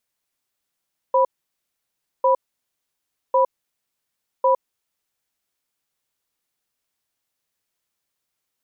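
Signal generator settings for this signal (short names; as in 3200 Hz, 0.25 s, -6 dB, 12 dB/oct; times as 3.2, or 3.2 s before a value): cadence 529 Hz, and 985 Hz, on 0.11 s, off 0.99 s, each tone -16 dBFS 3.45 s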